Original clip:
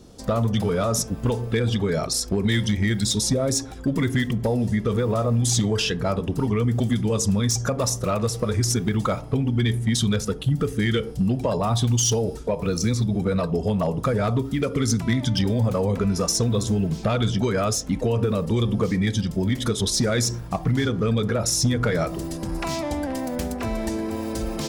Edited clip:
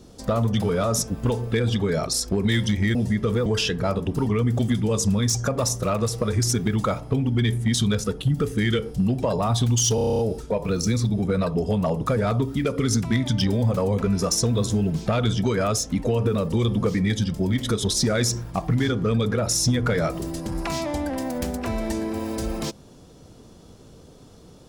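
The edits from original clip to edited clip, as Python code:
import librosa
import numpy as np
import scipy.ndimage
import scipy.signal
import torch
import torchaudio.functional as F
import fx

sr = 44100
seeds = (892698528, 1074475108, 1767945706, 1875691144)

y = fx.edit(x, sr, fx.cut(start_s=2.95, length_s=1.62),
    fx.cut(start_s=5.08, length_s=0.59),
    fx.stutter(start_s=12.16, slice_s=0.03, count=9), tone=tone)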